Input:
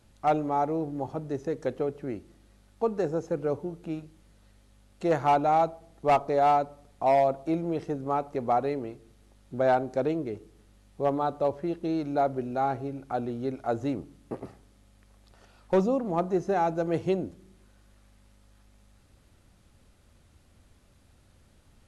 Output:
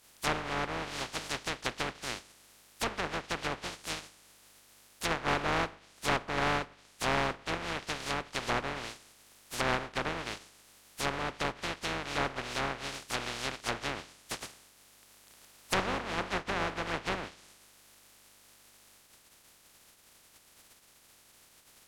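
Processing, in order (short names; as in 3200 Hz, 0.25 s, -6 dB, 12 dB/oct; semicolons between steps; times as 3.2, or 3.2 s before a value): spectral contrast lowered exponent 0.11; treble ducked by the level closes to 1800 Hz, closed at -24 dBFS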